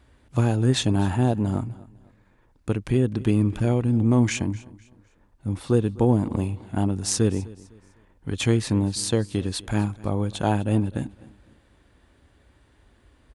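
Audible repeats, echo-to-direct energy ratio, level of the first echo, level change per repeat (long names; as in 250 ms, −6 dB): 2, −20.5 dB, −21.0 dB, −9.5 dB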